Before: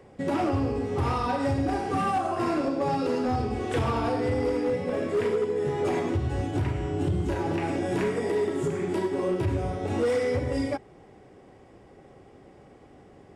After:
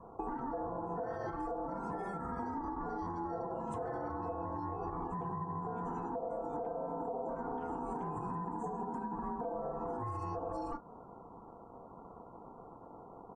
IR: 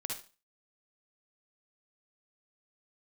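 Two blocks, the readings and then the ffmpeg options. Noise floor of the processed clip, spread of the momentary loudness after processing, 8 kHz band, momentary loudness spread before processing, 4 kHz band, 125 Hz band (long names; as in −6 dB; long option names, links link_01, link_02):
−53 dBFS, 14 LU, below −20 dB, 3 LU, below −25 dB, −16.0 dB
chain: -filter_complex "[0:a]firequalizer=gain_entry='entry(120,0);entry(1600,-19);entry(6700,-4)':delay=0.05:min_phase=1,asoftclip=type=tanh:threshold=-23dB,acrossover=split=370[link_01][link_02];[link_02]acompressor=threshold=-36dB:ratio=6[link_03];[link_01][link_03]amix=inputs=2:normalize=0,asplit=2[link_04][link_05];[link_05]adelay=35,volume=-13dB[link_06];[link_04][link_06]amix=inputs=2:normalize=0,aeval=exprs='val(0)*sin(2*PI*590*n/s)':channel_layout=same,alimiter=level_in=5dB:limit=-24dB:level=0:latency=1:release=165,volume=-5dB,acompressor=threshold=-41dB:ratio=4,afftdn=noise_reduction=21:noise_floor=-66,volume=5dB"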